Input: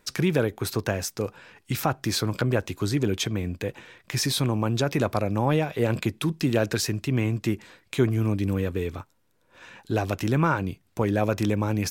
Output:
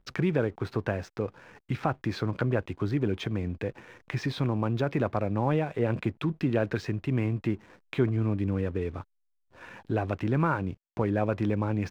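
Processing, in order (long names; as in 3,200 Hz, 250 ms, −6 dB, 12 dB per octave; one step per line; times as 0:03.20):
low-pass filter 2,300 Hz 12 dB per octave
in parallel at +2.5 dB: downward compressor 6 to 1, threshold −39 dBFS, peak gain reduction 21.5 dB
on the sum: slack as between gear wheels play −44.5 dBFS
level −4.5 dB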